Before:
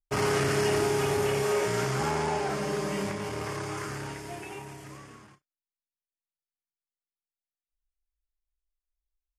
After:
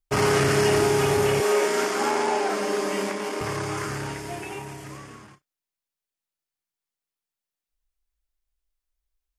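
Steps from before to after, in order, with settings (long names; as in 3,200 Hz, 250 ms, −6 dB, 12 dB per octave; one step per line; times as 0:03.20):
0:01.40–0:03.41: Butterworth high-pass 210 Hz 48 dB per octave
level +5.5 dB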